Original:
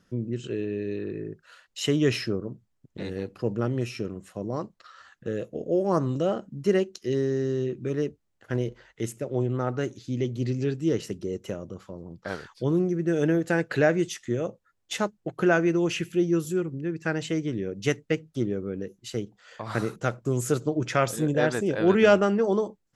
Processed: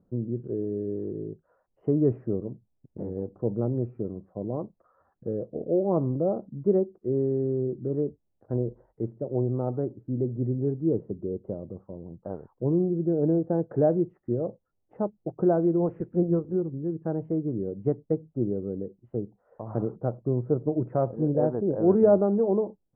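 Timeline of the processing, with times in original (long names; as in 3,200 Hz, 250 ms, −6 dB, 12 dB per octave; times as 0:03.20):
0:10.86–0:13.66: high-shelf EQ 2,300 Hz −10 dB
0:15.79–0:16.55: ceiling on every frequency bin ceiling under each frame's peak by 13 dB
whole clip: inverse Chebyshev low-pass filter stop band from 3,600 Hz, stop band 70 dB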